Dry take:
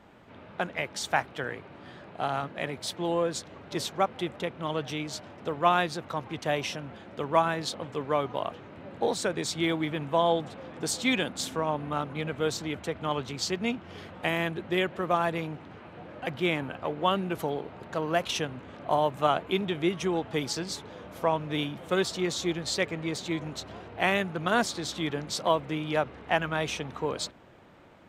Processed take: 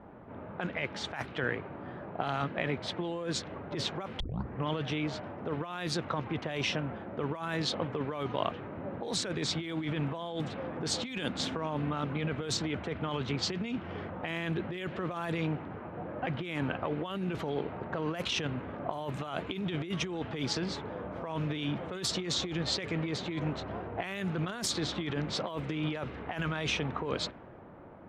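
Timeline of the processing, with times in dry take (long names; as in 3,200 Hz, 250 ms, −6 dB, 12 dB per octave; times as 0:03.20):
0:04.20: tape start 0.48 s
whole clip: low-pass that shuts in the quiet parts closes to 1,100 Hz, open at −21 dBFS; dynamic equaliser 730 Hz, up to −5 dB, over −38 dBFS, Q 0.93; compressor whose output falls as the input rises −35 dBFS, ratio −1; level +1.5 dB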